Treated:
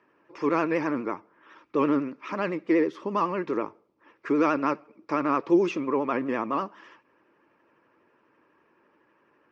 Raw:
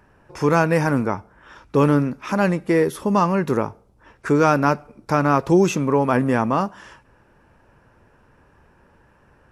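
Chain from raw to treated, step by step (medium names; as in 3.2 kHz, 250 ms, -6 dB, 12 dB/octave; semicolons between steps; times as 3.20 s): cabinet simulation 300–4800 Hz, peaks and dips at 320 Hz +9 dB, 760 Hz -7 dB, 1.1 kHz +4 dB, 2.3 kHz +4 dB, 3.9 kHz -4 dB; vibrato 12 Hz 86 cents; band-stop 1.5 kHz, Q 14; trim -7.5 dB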